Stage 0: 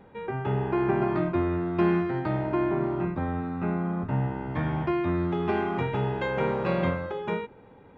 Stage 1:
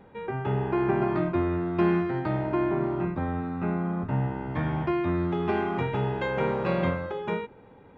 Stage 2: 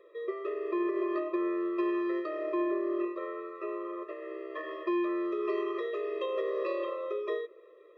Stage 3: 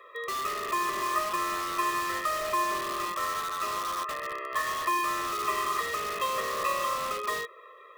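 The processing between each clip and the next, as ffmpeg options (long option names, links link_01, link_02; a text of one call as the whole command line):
ffmpeg -i in.wav -af anull out.wav
ffmpeg -i in.wav -af "alimiter=limit=-20dB:level=0:latency=1:release=135,afftfilt=real='re*eq(mod(floor(b*sr/1024/340),2),1)':imag='im*eq(mod(floor(b*sr/1024/340),2),1)':win_size=1024:overlap=0.75" out.wav
ffmpeg -i in.wav -filter_complex "[0:a]highpass=frequency=1100:width_type=q:width=1.9,asplit=2[link_01][link_02];[link_02]aeval=exprs='(mod(89.1*val(0)+1,2)-1)/89.1':channel_layout=same,volume=-3.5dB[link_03];[link_01][link_03]amix=inputs=2:normalize=0,volume=7.5dB" out.wav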